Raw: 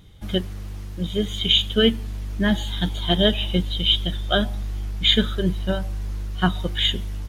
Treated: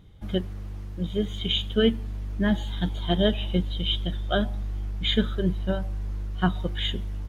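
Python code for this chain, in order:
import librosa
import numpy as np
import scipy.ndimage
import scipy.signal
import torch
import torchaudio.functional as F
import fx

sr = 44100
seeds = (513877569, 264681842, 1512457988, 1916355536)

y = fx.high_shelf(x, sr, hz=2400.0, db=-10.0)
y = y * 10.0 ** (-2.5 / 20.0)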